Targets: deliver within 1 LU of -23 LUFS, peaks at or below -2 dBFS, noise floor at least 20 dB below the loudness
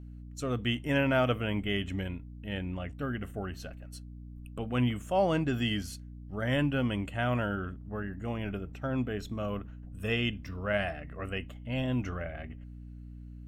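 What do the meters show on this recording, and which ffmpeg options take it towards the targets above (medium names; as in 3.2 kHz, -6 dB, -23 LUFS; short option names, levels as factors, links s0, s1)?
hum 60 Hz; highest harmonic 300 Hz; hum level -42 dBFS; loudness -32.5 LUFS; peak level -16.0 dBFS; loudness target -23.0 LUFS
-> -af "bandreject=f=60:t=h:w=6,bandreject=f=120:t=h:w=6,bandreject=f=180:t=h:w=6,bandreject=f=240:t=h:w=6,bandreject=f=300:t=h:w=6"
-af "volume=2.99"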